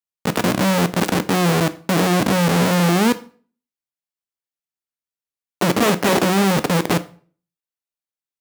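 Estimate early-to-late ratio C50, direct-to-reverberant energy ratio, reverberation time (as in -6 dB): 18.0 dB, 12.0 dB, 0.45 s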